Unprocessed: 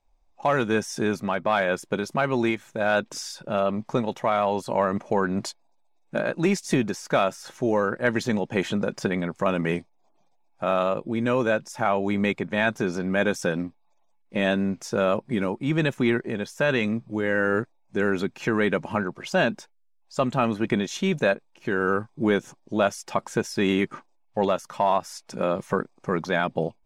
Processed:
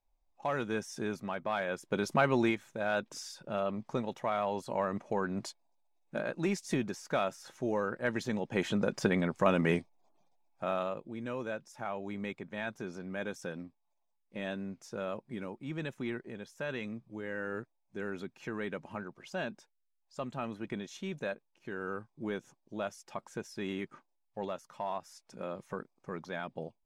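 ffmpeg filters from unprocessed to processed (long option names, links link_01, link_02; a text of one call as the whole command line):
ffmpeg -i in.wav -af "volume=4.5dB,afade=type=in:start_time=1.83:duration=0.27:silence=0.354813,afade=type=out:start_time=2.1:duration=0.7:silence=0.421697,afade=type=in:start_time=8.35:duration=0.69:silence=0.473151,afade=type=out:start_time=9.77:duration=1.32:silence=0.251189" out.wav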